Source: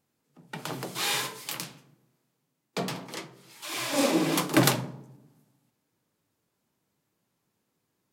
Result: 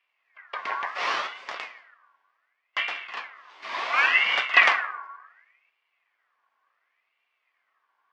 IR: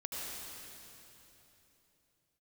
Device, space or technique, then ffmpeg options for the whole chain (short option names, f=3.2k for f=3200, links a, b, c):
voice changer toy: -af "aeval=exprs='val(0)*sin(2*PI*1900*n/s+1900*0.35/0.69*sin(2*PI*0.69*n/s))':c=same,highpass=500,equalizer=f=700:t=q:w=4:g=5,equalizer=f=1.1k:t=q:w=4:g=10,equalizer=f=2k:t=q:w=4:g=4,equalizer=f=3.9k:t=q:w=4:g=-5,lowpass=f=4k:w=0.5412,lowpass=f=4k:w=1.3066,volume=4.5dB"